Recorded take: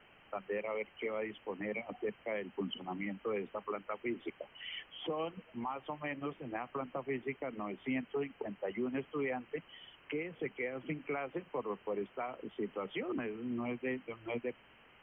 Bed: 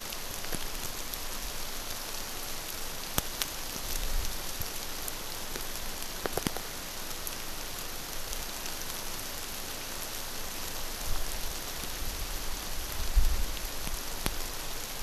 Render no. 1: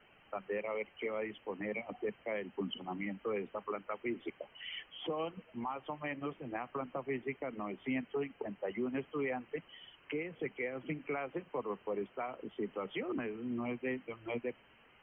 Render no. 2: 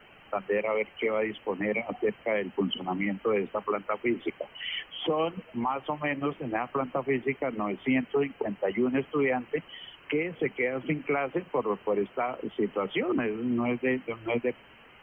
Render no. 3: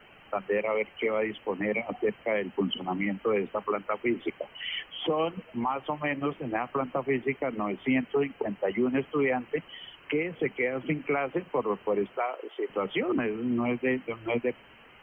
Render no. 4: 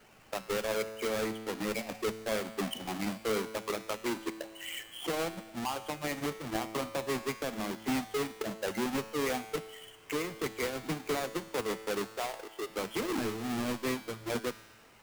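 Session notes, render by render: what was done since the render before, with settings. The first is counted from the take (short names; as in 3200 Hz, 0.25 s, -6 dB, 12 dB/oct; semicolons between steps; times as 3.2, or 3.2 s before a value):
denoiser 6 dB, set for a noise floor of -62 dBFS
gain +10 dB
12.17–12.7 inverse Chebyshev high-pass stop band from 190 Hz
half-waves squared off; resonator 110 Hz, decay 1.3 s, harmonics all, mix 70%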